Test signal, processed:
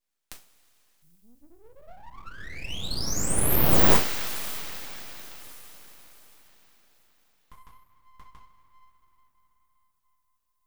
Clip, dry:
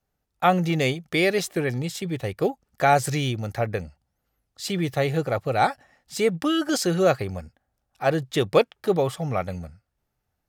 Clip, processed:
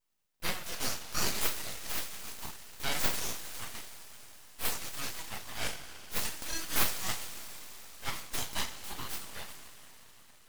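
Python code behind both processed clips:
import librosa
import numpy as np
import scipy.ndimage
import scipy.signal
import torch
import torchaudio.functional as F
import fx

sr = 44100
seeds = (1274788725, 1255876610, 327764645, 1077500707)

y = np.diff(x, prepend=0.0)
y = fx.rev_double_slope(y, sr, seeds[0], early_s=0.31, late_s=5.0, knee_db=-20, drr_db=-5.0)
y = np.abs(y)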